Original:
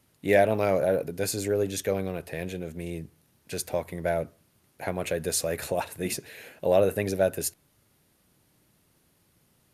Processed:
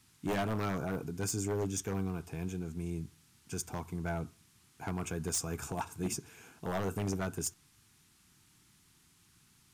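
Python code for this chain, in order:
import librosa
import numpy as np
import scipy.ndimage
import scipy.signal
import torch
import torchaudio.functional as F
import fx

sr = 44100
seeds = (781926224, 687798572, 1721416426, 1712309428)

y = fx.peak_eq(x, sr, hz=2800.0, db=-12.0, octaves=0.75)
y = fx.fixed_phaser(y, sr, hz=2800.0, stages=8)
y = fx.dmg_noise_band(y, sr, seeds[0], low_hz=1200.0, high_hz=12000.0, level_db=-68.0)
y = 10.0 ** (-26.0 / 20.0) * (np.abs((y / 10.0 ** (-26.0 / 20.0) + 3.0) % 4.0 - 2.0) - 1.0)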